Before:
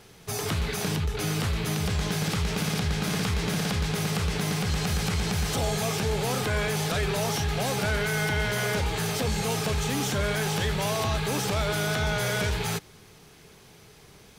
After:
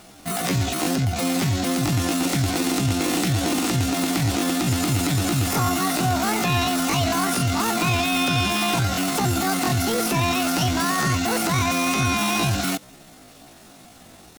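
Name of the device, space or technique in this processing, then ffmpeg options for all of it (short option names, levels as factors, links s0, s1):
chipmunk voice: -af "asetrate=74167,aresample=44100,atempo=0.594604,volume=1.88"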